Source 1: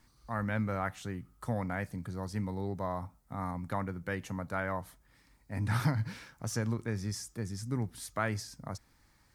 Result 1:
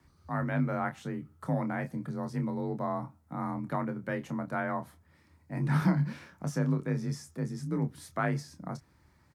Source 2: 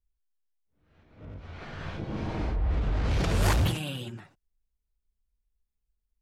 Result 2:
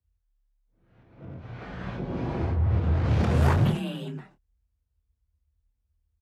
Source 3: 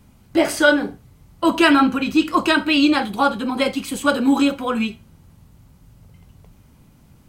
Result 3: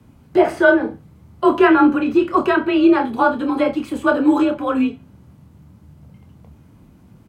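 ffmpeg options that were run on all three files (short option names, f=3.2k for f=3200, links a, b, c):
-filter_complex "[0:a]highshelf=f=2.4k:g=-9.5,acrossover=split=2400[a][b];[b]acompressor=threshold=-46dB:ratio=6[c];[a][c]amix=inputs=2:normalize=0,afreqshift=35,asplit=2[d][e];[e]adelay=27,volume=-8.5dB[f];[d][f]amix=inputs=2:normalize=0,volume=2.5dB"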